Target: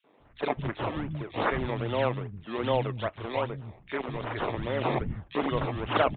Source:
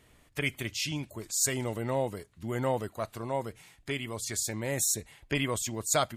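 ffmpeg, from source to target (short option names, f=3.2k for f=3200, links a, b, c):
-filter_complex "[0:a]acrusher=samples=21:mix=1:aa=0.000001:lfo=1:lforange=21:lforate=2.5,acrossover=split=210|2600[a][b][c];[b]adelay=40[d];[a]adelay=200[e];[e][d][c]amix=inputs=3:normalize=0,aresample=8000,aresample=44100,volume=3.5dB"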